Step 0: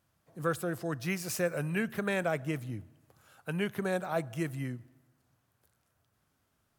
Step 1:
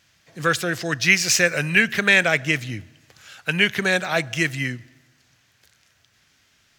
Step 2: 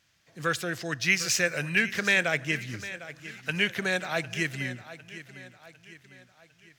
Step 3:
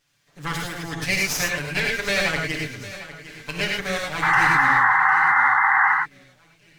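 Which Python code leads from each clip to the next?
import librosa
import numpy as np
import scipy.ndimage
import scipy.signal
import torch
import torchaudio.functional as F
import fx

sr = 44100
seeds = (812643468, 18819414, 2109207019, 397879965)

y1 = fx.band_shelf(x, sr, hz=3400.0, db=14.5, octaves=2.4)
y1 = F.gain(torch.from_numpy(y1), 7.5).numpy()
y2 = fx.echo_feedback(y1, sr, ms=753, feedback_pct=47, wet_db=-15.0)
y2 = F.gain(torch.from_numpy(y2), -7.5).numpy()
y3 = fx.lower_of_two(y2, sr, delay_ms=6.9)
y3 = fx.spec_paint(y3, sr, seeds[0], shape='noise', start_s=4.22, length_s=1.72, low_hz=750.0, high_hz=2100.0, level_db=-20.0)
y3 = fx.rev_gated(y3, sr, seeds[1], gate_ms=130, shape='rising', drr_db=0.0)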